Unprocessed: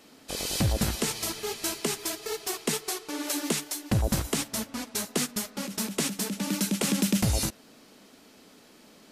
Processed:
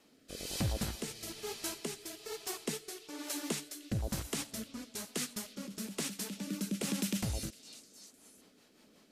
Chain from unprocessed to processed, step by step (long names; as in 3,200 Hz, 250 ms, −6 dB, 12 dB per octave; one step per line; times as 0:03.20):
echo through a band-pass that steps 305 ms, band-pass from 3,500 Hz, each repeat 0.7 octaves, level −10 dB
rotating-speaker cabinet horn 1.1 Hz, later 5.5 Hz, at 0:07.39
level −7.5 dB